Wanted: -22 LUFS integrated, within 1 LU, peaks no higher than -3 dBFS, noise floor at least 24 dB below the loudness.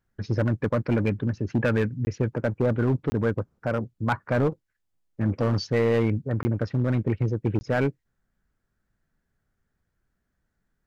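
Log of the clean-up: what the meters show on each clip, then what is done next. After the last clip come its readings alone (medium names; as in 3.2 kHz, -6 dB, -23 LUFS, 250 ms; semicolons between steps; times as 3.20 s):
clipped samples 1.8%; clipping level -16.5 dBFS; dropouts 4; longest dropout 20 ms; loudness -26.0 LUFS; peak level -16.5 dBFS; loudness target -22.0 LUFS
-> clip repair -16.5 dBFS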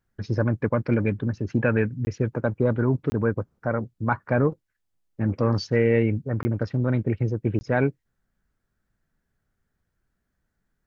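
clipped samples 0.0%; dropouts 4; longest dropout 20 ms
-> interpolate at 2.05/3.10/6.43/7.59 s, 20 ms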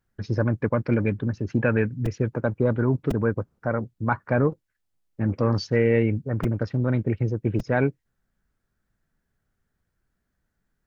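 dropouts 0; loudness -25.0 LUFS; peak level -8.0 dBFS; loudness target -22.0 LUFS
-> trim +3 dB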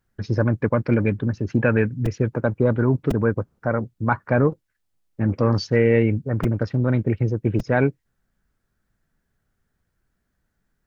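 loudness -22.0 LUFS; peak level -5.0 dBFS; noise floor -75 dBFS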